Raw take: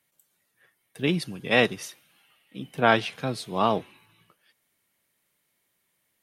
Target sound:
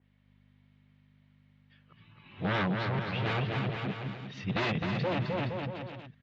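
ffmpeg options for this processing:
-filter_complex "[0:a]areverse,asubboost=boost=8:cutoff=140,aeval=exprs='val(0)+0.000891*(sin(2*PI*50*n/s)+sin(2*PI*2*50*n/s)/2+sin(2*PI*3*50*n/s)/3+sin(2*PI*4*50*n/s)/4+sin(2*PI*5*50*n/s)/5)':c=same,aresample=16000,aeval=exprs='0.075*(abs(mod(val(0)/0.075+3,4)-2)-1)':c=same,aresample=44100,lowpass=f=3.6k:w=0.5412,lowpass=f=3.6k:w=1.3066,asplit=2[a][b];[b]aecho=0:1:260|468|634.4|767.5|874:0.631|0.398|0.251|0.158|0.1[c];[a][c]amix=inputs=2:normalize=0,alimiter=limit=-22.5dB:level=0:latency=1:release=25,highpass=93,adynamicequalizer=threshold=0.00447:dfrequency=2600:dqfactor=0.7:tfrequency=2600:tqfactor=0.7:attack=5:release=100:ratio=0.375:range=3:mode=cutabove:tftype=highshelf"

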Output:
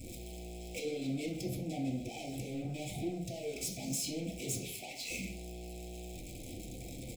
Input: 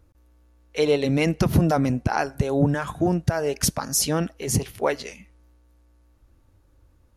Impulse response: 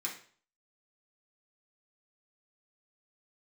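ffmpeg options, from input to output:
-filter_complex "[0:a]aeval=exprs='val(0)+0.5*0.0188*sgn(val(0))':c=same,asettb=1/sr,asplit=3[a][b][c];[a]atrim=end=4.704[d];[b]atrim=start=4.7:end=5.1,asetpts=PTS-STARTPTS,afade=t=in:d=0.004:c=qsin,afade=t=out:st=0.396:d=0.004:c=qsin,lowshelf=f=650:t=q:w=3:g=-12[e];[c]atrim=start=5.096[f];[d][e]acrossfade=d=0.004:c1=hsin:c2=qsin[g];[g][f]acrossfade=d=0.004:c1=qsin:c2=hsin,acompressor=threshold=-27dB:ratio=6,volume=34dB,asoftclip=hard,volume=-34dB,asuperstop=centerf=1300:order=12:qfactor=0.84,asplit=2[h][i];[i]adelay=100,highpass=300,lowpass=3.4k,asoftclip=type=hard:threshold=-34.5dB,volume=-15dB[j];[h][j]amix=inputs=2:normalize=0[k];[1:a]atrim=start_sample=2205[l];[k][l]afir=irnorm=-1:irlink=0,volume=-1.5dB"

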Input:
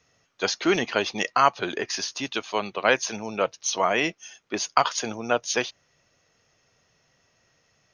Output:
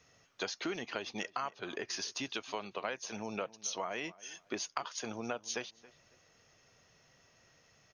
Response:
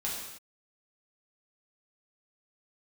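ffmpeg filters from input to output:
-filter_complex "[0:a]acompressor=threshold=-36dB:ratio=6,asplit=2[a][b];[b]adelay=275,lowpass=f=3k:p=1,volume=-20dB,asplit=2[c][d];[d]adelay=275,lowpass=f=3k:p=1,volume=0.3[e];[a][c][e]amix=inputs=3:normalize=0"

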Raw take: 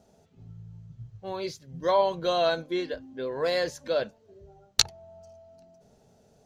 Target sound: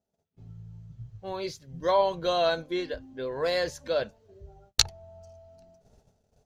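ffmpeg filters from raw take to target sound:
-af "asubboost=boost=3.5:cutoff=100,agate=range=-24dB:threshold=-57dB:ratio=16:detection=peak"

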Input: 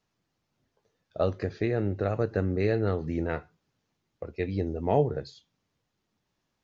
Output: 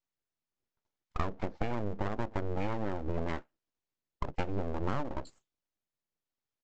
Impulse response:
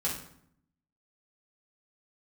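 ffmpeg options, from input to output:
-af "afftdn=nr=21:nf=-37,acompressor=threshold=-34dB:ratio=12,aresample=16000,aeval=exprs='abs(val(0))':c=same,aresample=44100,volume=7dB"

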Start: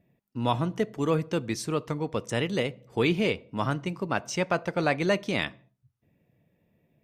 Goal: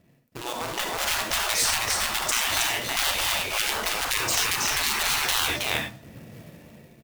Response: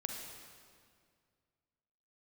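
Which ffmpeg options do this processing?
-filter_complex "[0:a]bandreject=f=50:t=h:w=6,bandreject=f=100:t=h:w=6,bandreject=f=150:t=h:w=6,bandreject=f=200:t=h:w=6,bandreject=f=250:t=h:w=6,bandreject=f=300:t=h:w=6,acrusher=bits=2:mode=log:mix=0:aa=0.000001,acompressor=threshold=-35dB:ratio=5,aecho=1:1:320:0.473,dynaudnorm=f=120:g=13:m=16.5dB[a];[1:a]atrim=start_sample=2205,afade=t=out:st=0.17:d=0.01,atrim=end_sample=7938,asetrate=48510,aresample=44100[b];[a][b]afir=irnorm=-1:irlink=0,afftfilt=real='re*lt(hypot(re,im),0.0794)':imag='im*lt(hypot(re,im),0.0794)':win_size=1024:overlap=0.75,volume=8.5dB"

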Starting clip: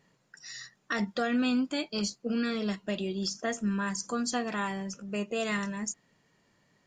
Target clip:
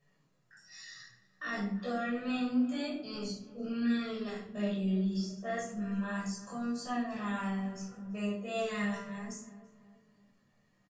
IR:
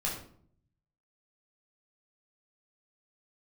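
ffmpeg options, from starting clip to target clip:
-filter_complex "[0:a]bandreject=f=60:t=h:w=6,bandreject=f=120:t=h:w=6,bandreject=f=180:t=h:w=6,acrossover=split=1600[a][b];[b]alimiter=level_in=4dB:limit=-24dB:level=0:latency=1:release=307,volume=-4dB[c];[a][c]amix=inputs=2:normalize=0,flanger=delay=6.9:depth=9.5:regen=-27:speed=0.47:shape=sinusoidal,atempo=0.63,asplit=2[d][e];[e]adelay=334,lowpass=f=1.5k:p=1,volume=-16dB,asplit=2[f][g];[g]adelay=334,lowpass=f=1.5k:p=1,volume=0.49,asplit=2[h][i];[i]adelay=334,lowpass=f=1.5k:p=1,volume=0.49,asplit=2[j][k];[k]adelay=334,lowpass=f=1.5k:p=1,volume=0.49[l];[d][f][h][j][l]amix=inputs=5:normalize=0[m];[1:a]atrim=start_sample=2205[n];[m][n]afir=irnorm=-1:irlink=0,volume=-6.5dB"

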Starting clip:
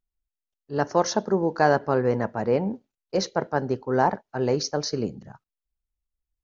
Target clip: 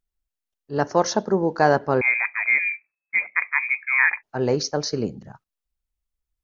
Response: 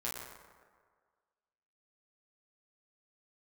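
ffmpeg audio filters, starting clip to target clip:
-filter_complex "[0:a]asettb=1/sr,asplit=3[a][b][c];[a]atrim=end=2.014[d];[b]atrim=start=2.01:end=4.23,asetpts=PTS-STARTPTS,afade=t=in:d=0.004:c=qsin,afade=t=out:st=2.216:d=0.004:c=qsin,lowpass=f=2.2k:t=q:w=0.5098,lowpass=f=2.2k:t=q:w=0.6013,lowpass=f=2.2k:t=q:w=0.9,lowpass=f=2.2k:t=q:w=2.563,afreqshift=-2600[e];[c]atrim=start=4.226[f];[d][e]acrossfade=d=0.004:c1=hsin:c2=qsin[g];[g][f]acrossfade=d=0.004:c1=qsin:c2=hsin,volume=2dB"

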